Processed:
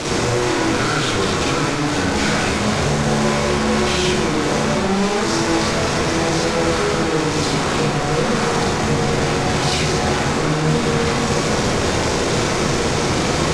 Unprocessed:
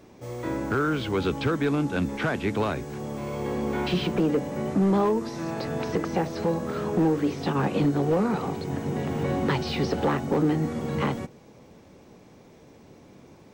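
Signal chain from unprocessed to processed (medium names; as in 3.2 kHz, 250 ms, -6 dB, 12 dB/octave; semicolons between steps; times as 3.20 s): one-bit comparator; low-pass 7.7 kHz 24 dB/octave; treble shelf 3.4 kHz +7 dB; reverberation RT60 1.2 s, pre-delay 33 ms, DRR -6 dB; trim +1 dB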